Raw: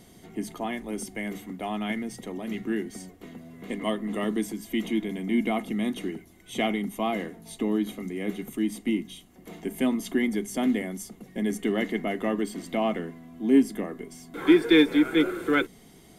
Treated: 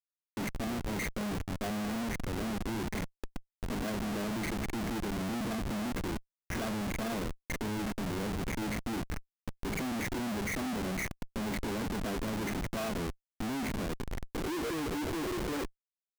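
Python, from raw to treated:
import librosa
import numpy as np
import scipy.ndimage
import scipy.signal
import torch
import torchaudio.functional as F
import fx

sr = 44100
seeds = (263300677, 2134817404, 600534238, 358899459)

y = fx.freq_compress(x, sr, knee_hz=1300.0, ratio=4.0)
y = scipy.signal.sosfilt(scipy.signal.cheby1(2, 1.0, [660.0, 1900.0], 'bandstop', fs=sr, output='sos'), y)
y = fx.schmitt(y, sr, flips_db=-35.5)
y = y * librosa.db_to_amplitude(-5.5)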